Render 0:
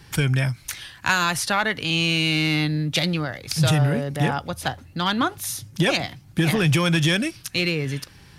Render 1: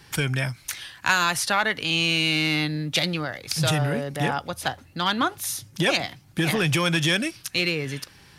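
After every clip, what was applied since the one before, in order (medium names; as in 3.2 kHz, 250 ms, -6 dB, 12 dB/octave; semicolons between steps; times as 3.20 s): bass shelf 210 Hz -8 dB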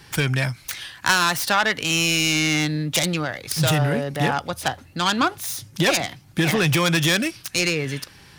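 self-modulated delay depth 0.095 ms; trim +3.5 dB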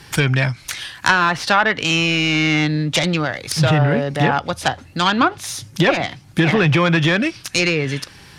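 low-pass that closes with the level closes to 2.2 kHz, closed at -14.5 dBFS; trim +5 dB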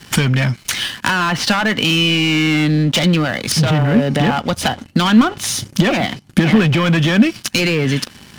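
waveshaping leveller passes 3; compression, threshold -12 dBFS, peak gain reduction 7 dB; small resonant body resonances 220/3000 Hz, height 11 dB, ringing for 45 ms; trim -3 dB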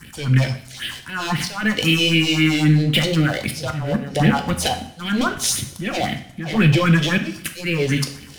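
phase shifter stages 4, 3.8 Hz, lowest notch 180–1100 Hz; slow attack 257 ms; two-slope reverb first 0.53 s, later 1.9 s, from -21 dB, DRR 5.5 dB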